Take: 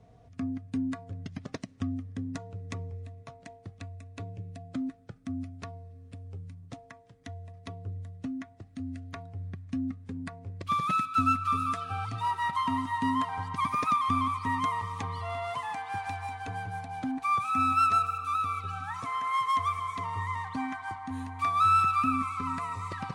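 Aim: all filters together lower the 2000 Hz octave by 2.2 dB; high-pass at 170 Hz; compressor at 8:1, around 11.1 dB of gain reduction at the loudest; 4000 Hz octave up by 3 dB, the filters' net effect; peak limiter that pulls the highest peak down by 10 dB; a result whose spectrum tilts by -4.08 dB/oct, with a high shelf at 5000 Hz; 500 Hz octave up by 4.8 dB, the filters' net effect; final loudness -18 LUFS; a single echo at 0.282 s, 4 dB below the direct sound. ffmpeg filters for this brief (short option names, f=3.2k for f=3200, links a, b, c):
-af "highpass=170,equalizer=f=500:t=o:g=7.5,equalizer=f=2k:t=o:g=-4.5,equalizer=f=4k:t=o:g=8,highshelf=f=5k:g=-7,acompressor=threshold=-33dB:ratio=8,alimiter=level_in=7.5dB:limit=-24dB:level=0:latency=1,volume=-7.5dB,aecho=1:1:282:0.631,volume=20.5dB"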